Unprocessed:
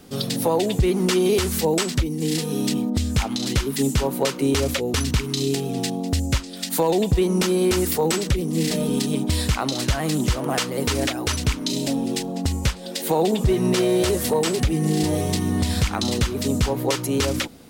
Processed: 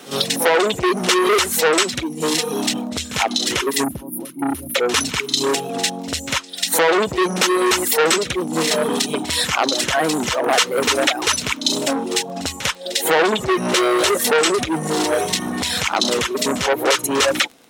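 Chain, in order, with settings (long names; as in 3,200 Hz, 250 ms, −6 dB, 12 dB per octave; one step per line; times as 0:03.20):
meter weighting curve A
reverb reduction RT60 1.7 s
notch filter 4,700 Hz, Q 9.8
on a send: backwards echo 50 ms −14.5 dB
on the sum: dynamic equaliser 470 Hz, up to +5 dB, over −37 dBFS, Q 0.96
in parallel at 0 dB: brickwall limiter −18 dBFS, peak gain reduction 8.5 dB
on the sum: surface crackle 16 per second −33 dBFS
gain on a spectral selection 0:03.84–0:04.76, 360–9,300 Hz −27 dB
saturating transformer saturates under 1,900 Hz
level +5.5 dB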